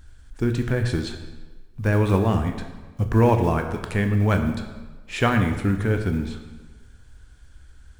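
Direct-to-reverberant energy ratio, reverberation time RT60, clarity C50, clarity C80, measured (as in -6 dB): 5.5 dB, 1.3 s, 8.0 dB, 9.5 dB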